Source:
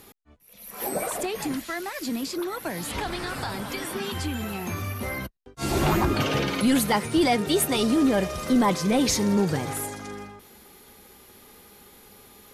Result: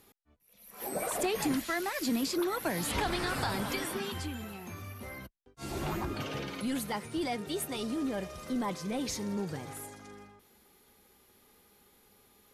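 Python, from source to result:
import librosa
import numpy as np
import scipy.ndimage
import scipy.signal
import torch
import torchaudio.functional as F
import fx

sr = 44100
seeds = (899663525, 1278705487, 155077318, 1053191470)

y = fx.gain(x, sr, db=fx.line((0.69, -11.5), (1.27, -1.0), (3.68, -1.0), (4.61, -12.5)))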